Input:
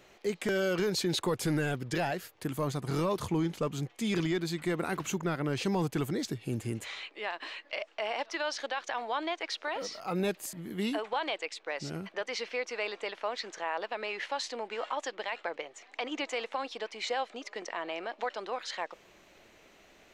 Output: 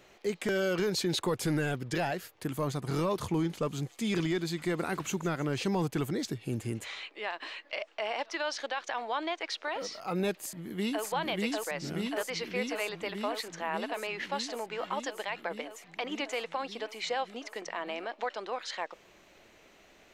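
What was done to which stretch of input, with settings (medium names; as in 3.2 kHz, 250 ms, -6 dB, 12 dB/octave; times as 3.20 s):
3.04–5.62 s: feedback echo behind a high-pass 158 ms, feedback 70%, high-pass 4.1 kHz, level -15 dB
10.35–11.04 s: echo throw 590 ms, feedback 80%, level -1 dB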